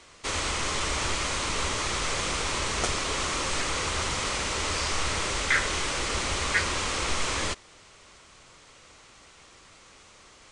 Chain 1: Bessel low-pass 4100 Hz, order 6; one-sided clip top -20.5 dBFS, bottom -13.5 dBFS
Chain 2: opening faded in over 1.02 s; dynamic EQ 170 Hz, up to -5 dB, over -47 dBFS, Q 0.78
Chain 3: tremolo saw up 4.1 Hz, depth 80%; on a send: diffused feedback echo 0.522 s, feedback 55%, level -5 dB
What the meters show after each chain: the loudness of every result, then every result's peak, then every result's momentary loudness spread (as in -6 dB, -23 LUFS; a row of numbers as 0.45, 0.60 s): -29.5, -28.0, -30.0 LUFS; -13.0, -10.5, -11.0 dBFS; 3, 5, 15 LU